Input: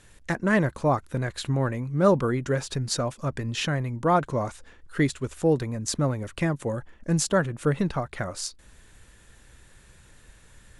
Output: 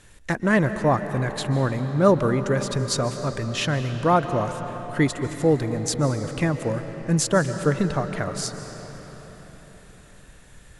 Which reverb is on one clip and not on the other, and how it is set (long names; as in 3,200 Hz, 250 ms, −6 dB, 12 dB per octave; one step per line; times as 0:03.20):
comb and all-pass reverb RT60 4.9 s, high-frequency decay 0.7×, pre-delay 105 ms, DRR 8.5 dB
level +2.5 dB